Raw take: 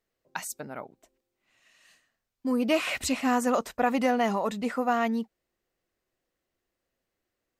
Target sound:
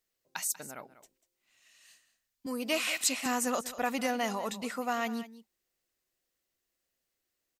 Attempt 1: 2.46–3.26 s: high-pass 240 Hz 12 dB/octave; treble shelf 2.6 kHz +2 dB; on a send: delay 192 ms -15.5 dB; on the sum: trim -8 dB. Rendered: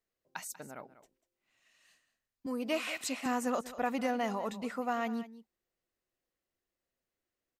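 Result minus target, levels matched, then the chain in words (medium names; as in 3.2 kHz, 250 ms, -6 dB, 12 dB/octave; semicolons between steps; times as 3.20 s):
4 kHz band -4.5 dB
2.46–3.26 s: high-pass 240 Hz 12 dB/octave; treble shelf 2.6 kHz +14 dB; on a send: delay 192 ms -15.5 dB; on the sum: trim -8 dB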